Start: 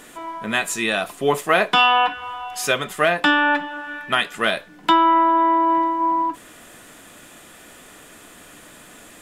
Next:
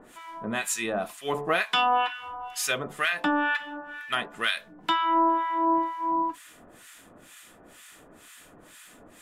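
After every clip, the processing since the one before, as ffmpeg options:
-filter_complex "[0:a]bandreject=f=72.55:t=h:w=4,bandreject=f=145.1:t=h:w=4,bandreject=f=217.65:t=h:w=4,bandreject=f=290.2:t=h:w=4,bandreject=f=362.75:t=h:w=4,bandreject=f=435.3:t=h:w=4,bandreject=f=507.85:t=h:w=4,bandreject=f=580.4:t=h:w=4,bandreject=f=652.95:t=h:w=4,bandreject=f=725.5:t=h:w=4,bandreject=f=798.05:t=h:w=4,bandreject=f=870.6:t=h:w=4,bandreject=f=943.15:t=h:w=4,bandreject=f=1015.7:t=h:w=4,bandreject=f=1088.25:t=h:w=4,bandreject=f=1160.8:t=h:w=4,acrossover=split=1200[s0][s1];[s0]aeval=exprs='val(0)*(1-1/2+1/2*cos(2*PI*2.1*n/s))':c=same[s2];[s1]aeval=exprs='val(0)*(1-1/2-1/2*cos(2*PI*2.1*n/s))':c=same[s3];[s2][s3]amix=inputs=2:normalize=0,volume=0.794"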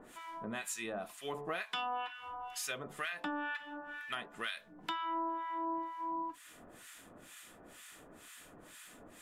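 -af "acompressor=threshold=0.0112:ratio=2,volume=0.631"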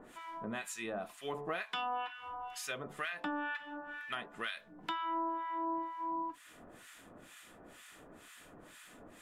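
-af "highshelf=f=4400:g=-6.5,volume=1.12"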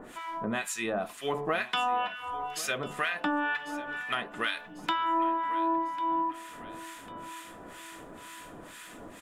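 -af "aecho=1:1:1097|2194|3291|4388:0.141|0.0678|0.0325|0.0156,volume=2.66"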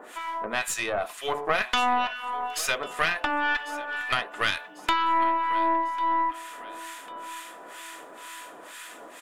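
-af "highpass=500,aeval=exprs='0.2*(cos(1*acos(clip(val(0)/0.2,-1,1)))-cos(1*PI/2))+0.0316*(cos(4*acos(clip(val(0)/0.2,-1,1)))-cos(4*PI/2))':c=same,volume=1.78"

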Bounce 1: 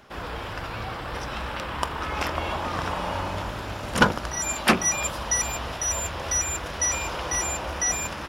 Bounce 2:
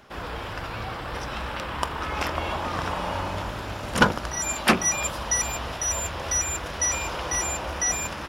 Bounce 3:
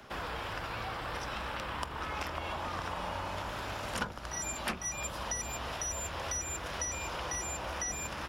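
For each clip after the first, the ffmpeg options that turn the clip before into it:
-af anull
-filter_complex "[0:a]acrossover=split=84|200|550[s0][s1][s2][s3];[s0]acompressor=threshold=0.00398:ratio=4[s4];[s1]acompressor=threshold=0.00282:ratio=4[s5];[s2]acompressor=threshold=0.00316:ratio=4[s6];[s3]acompressor=threshold=0.0141:ratio=4[s7];[s4][s5][s6][s7]amix=inputs=4:normalize=0"

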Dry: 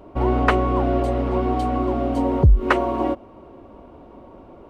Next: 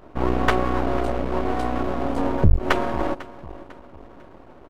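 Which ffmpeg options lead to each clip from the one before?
-af "aecho=1:1:498|996|1494:0.126|0.0504|0.0201,aeval=exprs='max(val(0),0)':c=same,volume=1.19"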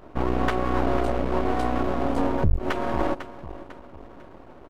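-af "alimiter=limit=0.299:level=0:latency=1:release=216"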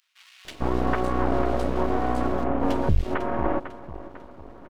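-filter_complex "[0:a]acrossover=split=2600[s0][s1];[s0]adelay=450[s2];[s2][s1]amix=inputs=2:normalize=0"

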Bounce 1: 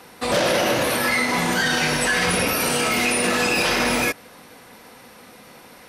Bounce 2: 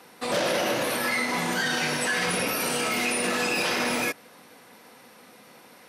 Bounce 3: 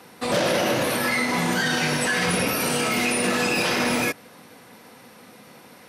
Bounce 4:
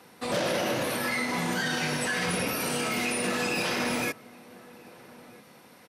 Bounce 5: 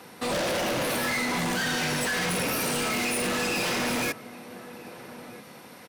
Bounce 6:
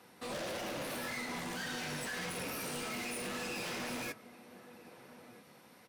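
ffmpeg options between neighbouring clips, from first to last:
-af "highpass=140,volume=0.531"
-af "equalizer=f=80:w=0.43:g=8,volume=1.33"
-filter_complex "[0:a]asplit=2[s0][s1];[s1]adelay=1283,volume=0.1,highshelf=f=4000:g=-28.9[s2];[s0][s2]amix=inputs=2:normalize=0,volume=0.501"
-af "asoftclip=type=hard:threshold=0.0251,volume=2.11"
-af "flanger=delay=7.8:depth=7.8:regen=-47:speed=1.7:shape=triangular,volume=0.376"

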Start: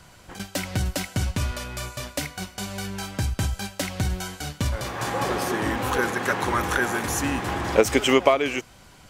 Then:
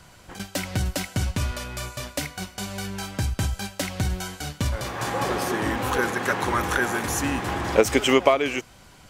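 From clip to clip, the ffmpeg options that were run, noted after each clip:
-af anull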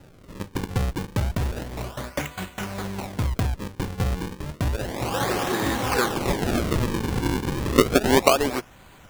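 -af "acrusher=samples=39:mix=1:aa=0.000001:lfo=1:lforange=62.4:lforate=0.31,volume=1.12"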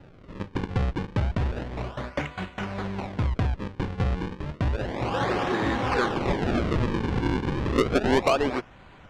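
-af "lowpass=3200,asoftclip=type=tanh:threshold=0.2"

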